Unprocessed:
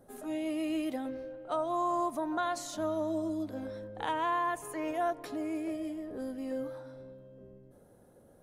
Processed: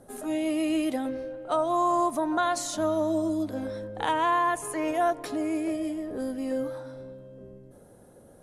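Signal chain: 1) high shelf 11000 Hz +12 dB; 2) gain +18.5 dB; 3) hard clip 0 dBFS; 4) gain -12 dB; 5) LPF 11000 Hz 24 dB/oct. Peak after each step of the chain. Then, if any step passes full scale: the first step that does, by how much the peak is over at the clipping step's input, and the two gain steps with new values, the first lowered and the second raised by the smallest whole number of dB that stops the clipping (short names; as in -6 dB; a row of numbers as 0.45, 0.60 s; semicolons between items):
-20.5, -2.0, -2.0, -14.0, -14.0 dBFS; no overload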